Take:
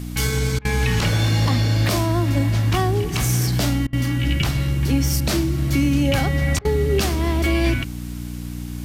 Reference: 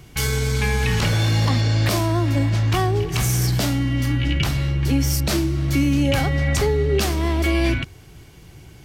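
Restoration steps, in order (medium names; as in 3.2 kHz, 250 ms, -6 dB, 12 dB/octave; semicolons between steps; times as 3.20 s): de-hum 60.1 Hz, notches 5; interpolate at 0.59/3.87/6.59 s, 58 ms; noise print and reduce 13 dB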